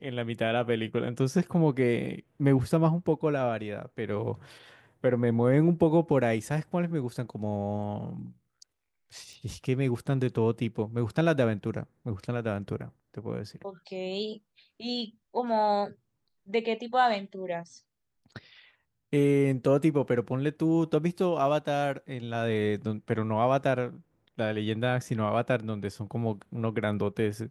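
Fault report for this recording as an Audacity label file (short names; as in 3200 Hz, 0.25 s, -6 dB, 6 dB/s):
9.330000	9.330000	pop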